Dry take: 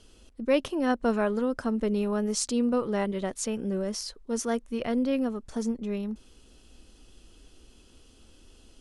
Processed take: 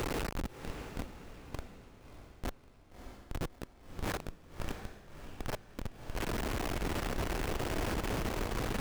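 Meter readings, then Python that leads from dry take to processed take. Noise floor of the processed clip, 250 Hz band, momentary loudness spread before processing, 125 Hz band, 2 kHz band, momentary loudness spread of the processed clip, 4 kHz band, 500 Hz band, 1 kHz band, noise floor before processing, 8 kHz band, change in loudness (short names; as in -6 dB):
-58 dBFS, -13.5 dB, 7 LU, +1.0 dB, -2.0 dB, 17 LU, -4.0 dB, -12.0 dB, -5.0 dB, -57 dBFS, -11.0 dB, -10.0 dB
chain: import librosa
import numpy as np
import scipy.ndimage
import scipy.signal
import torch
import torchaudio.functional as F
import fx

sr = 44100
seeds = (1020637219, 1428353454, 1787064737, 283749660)

p1 = fx.delta_mod(x, sr, bps=16000, step_db=-33.0)
p2 = scipy.signal.sosfilt(scipy.signal.butter(4, 220.0, 'highpass', fs=sr, output='sos'), p1)
p3 = fx.level_steps(p2, sr, step_db=16)
p4 = p2 + F.gain(torch.from_numpy(p3), 0.0).numpy()
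p5 = fx.transient(p4, sr, attack_db=-1, sustain_db=8)
p6 = fx.over_compress(p5, sr, threshold_db=-37.0, ratio=-1.0)
p7 = fx.schmitt(p6, sr, flips_db=-27.5)
p8 = p7 + fx.echo_diffused(p7, sr, ms=628, feedback_pct=42, wet_db=-8, dry=0)
p9 = fx.running_max(p8, sr, window=3)
y = F.gain(torch.from_numpy(p9), 1.0).numpy()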